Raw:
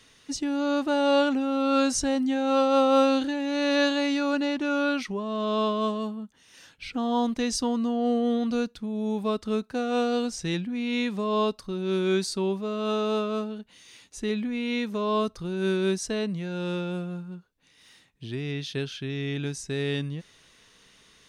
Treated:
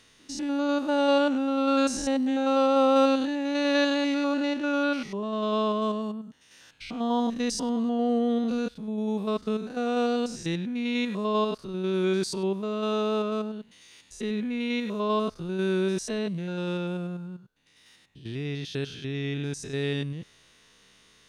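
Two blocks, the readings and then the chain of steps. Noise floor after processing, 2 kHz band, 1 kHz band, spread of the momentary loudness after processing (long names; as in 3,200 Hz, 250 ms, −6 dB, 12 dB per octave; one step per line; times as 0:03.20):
−59 dBFS, −1.0 dB, −0.5 dB, 10 LU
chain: spectrum averaged block by block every 100 ms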